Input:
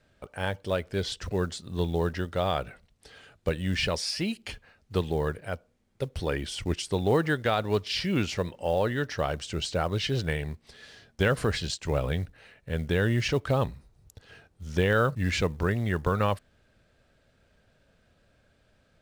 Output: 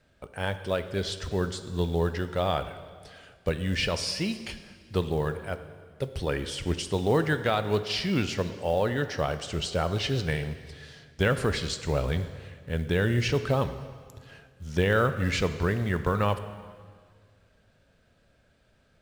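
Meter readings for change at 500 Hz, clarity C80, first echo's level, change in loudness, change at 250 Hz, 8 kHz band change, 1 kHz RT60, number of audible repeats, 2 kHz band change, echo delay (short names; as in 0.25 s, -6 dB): +0.5 dB, 12.5 dB, none, +0.5 dB, +0.5 dB, +0.5 dB, 1.7 s, none, +0.5 dB, none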